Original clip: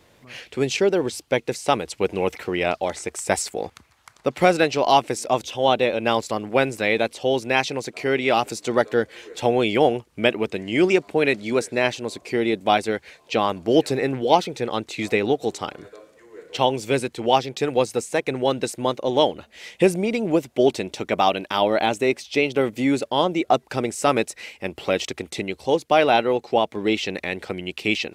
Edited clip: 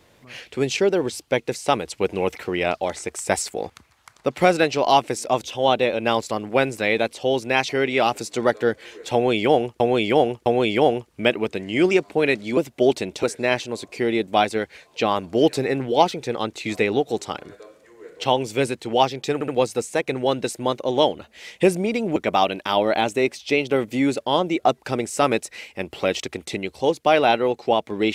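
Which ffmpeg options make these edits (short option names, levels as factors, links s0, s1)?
-filter_complex "[0:a]asplit=9[s0][s1][s2][s3][s4][s5][s6][s7][s8];[s0]atrim=end=7.692[s9];[s1]atrim=start=7.998:end=10.112[s10];[s2]atrim=start=9.448:end=10.112[s11];[s3]atrim=start=9.448:end=11.562[s12];[s4]atrim=start=20.348:end=21.012[s13];[s5]atrim=start=11.558:end=17.742[s14];[s6]atrim=start=17.668:end=17.742[s15];[s7]atrim=start=17.668:end=20.352[s16];[s8]atrim=start=21.008[s17];[s9][s10]acrossfade=d=0.004:c1=hsin:c2=hsin[s18];[s18][s11]acrossfade=d=0.004:c1=hsin:c2=hsin[s19];[s19][s12]acrossfade=d=0.004:c1=hsin:c2=hsin[s20];[s20][s13]acrossfade=d=0.004:c1=hsin:c2=hsin[s21];[s21][s14]acrossfade=d=0.004:c1=hsin:c2=hsin[s22];[s22][s15]acrossfade=d=0.004:c1=hsin:c2=hsin[s23];[s23][s16]acrossfade=d=0.004:c1=hsin:c2=hsin[s24];[s24][s17]acrossfade=d=0.004:c1=hsin:c2=hsin"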